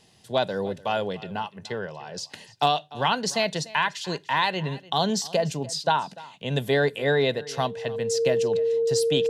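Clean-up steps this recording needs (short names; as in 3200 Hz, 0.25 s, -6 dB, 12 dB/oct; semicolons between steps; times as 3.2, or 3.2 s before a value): clip repair -10 dBFS; notch 460 Hz, Q 30; inverse comb 0.295 s -20 dB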